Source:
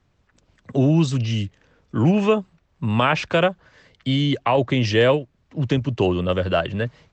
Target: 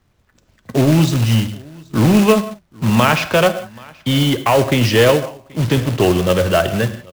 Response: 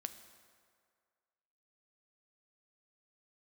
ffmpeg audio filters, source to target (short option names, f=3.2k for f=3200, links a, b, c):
-filter_complex "[0:a]aecho=1:1:780:0.0631,asplit=2[a][b];[b]acrusher=bits=4:mix=0:aa=0.5,volume=-7.5dB[c];[a][c]amix=inputs=2:normalize=0,acontrast=68[d];[1:a]atrim=start_sample=2205,afade=t=out:st=0.24:d=0.01,atrim=end_sample=11025[e];[d][e]afir=irnorm=-1:irlink=0,acrusher=bits=3:mode=log:mix=0:aa=0.000001"